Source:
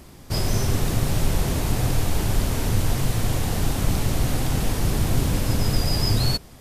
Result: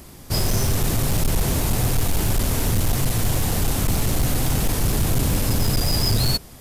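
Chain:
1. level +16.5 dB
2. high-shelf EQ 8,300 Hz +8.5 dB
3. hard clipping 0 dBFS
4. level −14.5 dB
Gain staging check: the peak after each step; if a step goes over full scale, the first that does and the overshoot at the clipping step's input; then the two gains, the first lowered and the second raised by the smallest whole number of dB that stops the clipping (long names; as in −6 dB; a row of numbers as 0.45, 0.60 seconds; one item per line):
+8.5, +9.0, 0.0, −14.5 dBFS
step 1, 9.0 dB
step 1 +7.5 dB, step 4 −5.5 dB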